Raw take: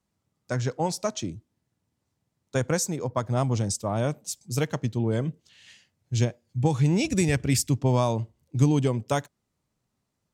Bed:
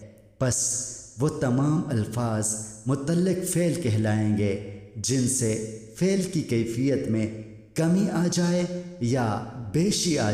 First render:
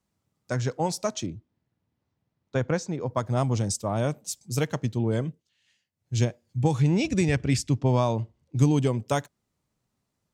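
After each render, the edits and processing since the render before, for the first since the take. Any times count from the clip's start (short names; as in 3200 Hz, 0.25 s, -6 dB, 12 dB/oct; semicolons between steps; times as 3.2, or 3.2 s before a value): 1.26–3.07 air absorption 160 m; 5.19–6.19 dip -16.5 dB, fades 0.27 s; 6.82–8.56 Bessel low-pass 5200 Hz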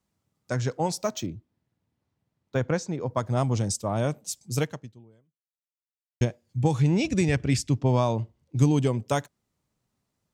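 0.98–2.58 decimation joined by straight lines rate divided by 2×; 4.62–6.21 fade out exponential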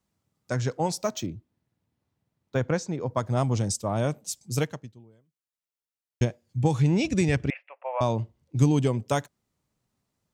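7.5–8.01 Chebyshev band-pass 530–2700 Hz, order 5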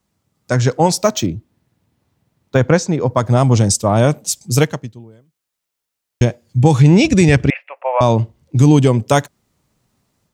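AGC gain up to 5 dB; maximiser +8.5 dB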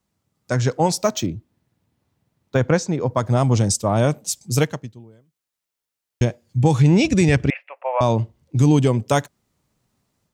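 gain -5 dB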